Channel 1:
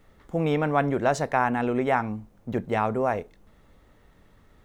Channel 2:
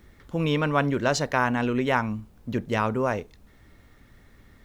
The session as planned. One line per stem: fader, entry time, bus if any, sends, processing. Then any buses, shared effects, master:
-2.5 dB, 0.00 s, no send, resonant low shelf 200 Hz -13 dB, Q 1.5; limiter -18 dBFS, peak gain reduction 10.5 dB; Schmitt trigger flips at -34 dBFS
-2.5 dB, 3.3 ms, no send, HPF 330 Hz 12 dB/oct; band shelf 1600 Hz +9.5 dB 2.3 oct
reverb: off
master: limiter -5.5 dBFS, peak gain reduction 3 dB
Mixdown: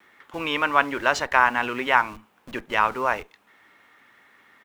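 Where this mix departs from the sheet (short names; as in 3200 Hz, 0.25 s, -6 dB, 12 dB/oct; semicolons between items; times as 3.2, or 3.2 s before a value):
stem 1 -2.5 dB -> -11.5 dB; master: missing limiter -5.5 dBFS, peak gain reduction 3 dB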